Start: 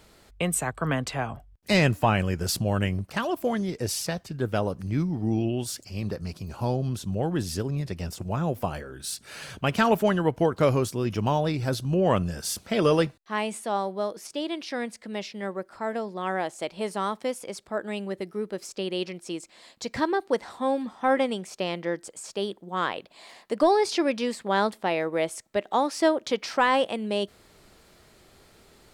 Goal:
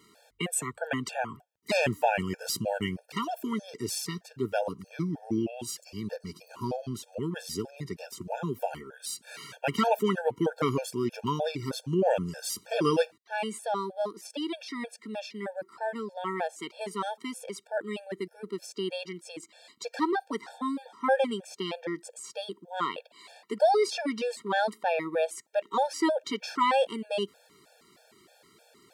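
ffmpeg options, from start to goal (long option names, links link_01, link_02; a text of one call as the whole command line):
ffmpeg -i in.wav -af "highpass=190,afftfilt=real='re*gt(sin(2*PI*3.2*pts/sr)*(1-2*mod(floor(b*sr/1024/460),2)),0)':imag='im*gt(sin(2*PI*3.2*pts/sr)*(1-2*mod(floor(b*sr/1024/460),2)),0)':win_size=1024:overlap=0.75" out.wav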